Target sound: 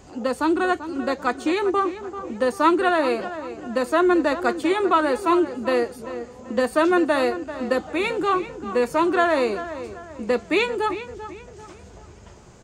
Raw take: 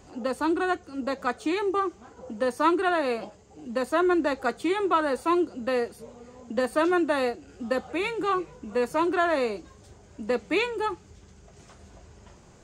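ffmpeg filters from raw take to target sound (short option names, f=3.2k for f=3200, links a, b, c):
-filter_complex "[0:a]asplit=2[a][b];[b]adelay=390,lowpass=f=3.1k:p=1,volume=-12dB,asplit=2[c][d];[d]adelay=390,lowpass=f=3.1k:p=1,volume=0.4,asplit=2[e][f];[f]adelay=390,lowpass=f=3.1k:p=1,volume=0.4,asplit=2[g][h];[h]adelay=390,lowpass=f=3.1k:p=1,volume=0.4[i];[a][c][e][g][i]amix=inputs=5:normalize=0,volume=4.5dB"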